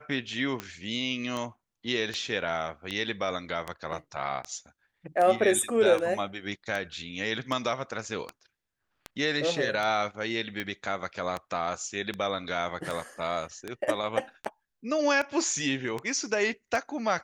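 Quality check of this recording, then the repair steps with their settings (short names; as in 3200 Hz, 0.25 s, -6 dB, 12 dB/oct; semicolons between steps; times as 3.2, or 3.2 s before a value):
tick 78 rpm -18 dBFS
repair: de-click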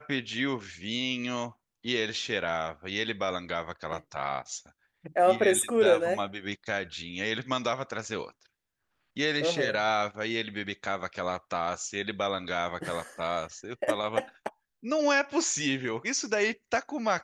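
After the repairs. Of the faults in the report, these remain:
none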